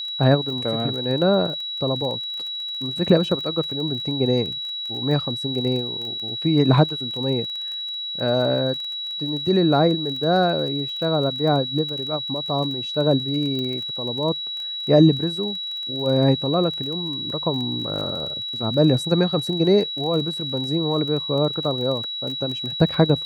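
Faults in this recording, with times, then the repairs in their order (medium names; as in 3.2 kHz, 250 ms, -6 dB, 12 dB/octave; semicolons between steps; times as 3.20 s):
crackle 23 per s -29 dBFS
whine 3.9 kHz -27 dBFS
13.59 s: pop -17 dBFS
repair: de-click; band-stop 3.9 kHz, Q 30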